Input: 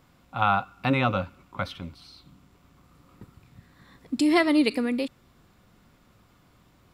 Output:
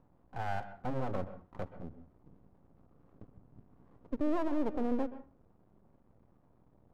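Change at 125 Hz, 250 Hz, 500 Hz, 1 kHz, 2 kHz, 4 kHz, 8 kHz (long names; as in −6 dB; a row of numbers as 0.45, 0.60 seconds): −10.5 dB, −11.0 dB, −8.5 dB, −12.5 dB, −18.5 dB, below −20 dB, below −20 dB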